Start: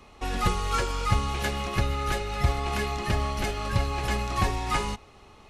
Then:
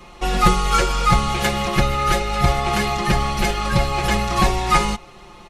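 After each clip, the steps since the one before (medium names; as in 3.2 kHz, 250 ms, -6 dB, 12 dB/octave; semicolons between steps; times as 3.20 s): comb 5.7 ms, depth 100%; trim +6.5 dB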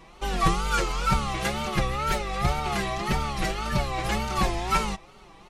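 wow and flutter 140 cents; trim -7.5 dB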